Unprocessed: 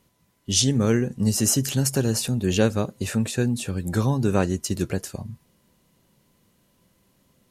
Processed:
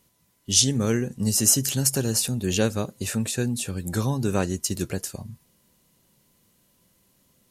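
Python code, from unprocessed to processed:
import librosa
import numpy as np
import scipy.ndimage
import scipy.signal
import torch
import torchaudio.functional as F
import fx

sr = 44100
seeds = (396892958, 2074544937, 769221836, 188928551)

y = fx.high_shelf(x, sr, hz=4200.0, db=8.5)
y = F.gain(torch.from_numpy(y), -3.0).numpy()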